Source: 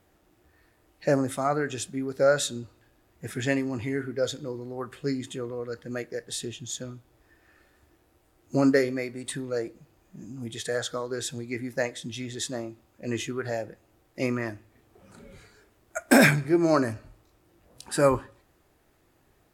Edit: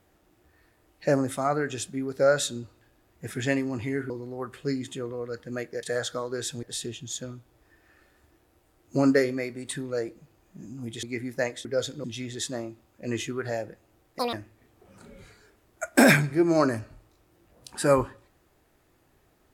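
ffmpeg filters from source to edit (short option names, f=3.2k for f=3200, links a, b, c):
-filter_complex "[0:a]asplit=9[a][b][c][d][e][f][g][h][i];[a]atrim=end=4.102[j];[b]atrim=start=4.488:end=6.222[k];[c]atrim=start=10.618:end=11.422[l];[d]atrim=start=6.218:end=10.622[m];[e]atrim=start=11.418:end=12.042[n];[f]atrim=start=4.098:end=4.492[o];[g]atrim=start=12.038:end=14.194[p];[h]atrim=start=14.19:end=14.47,asetpts=PTS-STARTPTS,asetrate=86877,aresample=44100,atrim=end_sample=6268,asetpts=PTS-STARTPTS[q];[i]atrim=start=14.466[r];[j][k]acrossfade=d=0.004:c1=hsin:c2=hsin[s];[s][l]acrossfade=d=0.004:c1=hsin:c2=hsin[t];[t][m]acrossfade=d=0.004:c1=hsin:c2=hsin[u];[u][n]acrossfade=d=0.004:c1=hsin:c2=hsin[v];[v][o]acrossfade=d=0.004:c1=hsin:c2=hsin[w];[w][p]acrossfade=d=0.004:c1=hsin:c2=hsin[x];[x][q]acrossfade=d=0.004:c1=hsin:c2=hsin[y];[y][r]acrossfade=d=0.004:c1=hsin:c2=hsin"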